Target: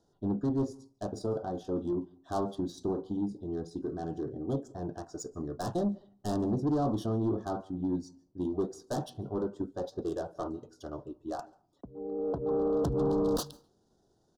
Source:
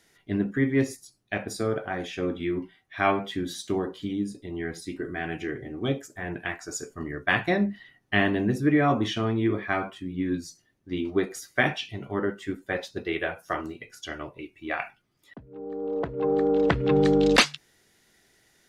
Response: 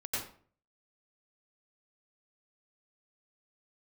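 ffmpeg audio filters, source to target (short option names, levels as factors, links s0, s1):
-filter_complex "[0:a]adynamicsmooth=sensitivity=3:basefreq=3700,asoftclip=type=tanh:threshold=0.0708,asuperstop=centerf=2200:order=4:qfactor=0.56,asplit=2[s0][s1];[1:a]atrim=start_sample=2205,adelay=91[s2];[s1][s2]afir=irnorm=-1:irlink=0,volume=0.0447[s3];[s0][s3]amix=inputs=2:normalize=0,atempo=1.3,volume=0.891"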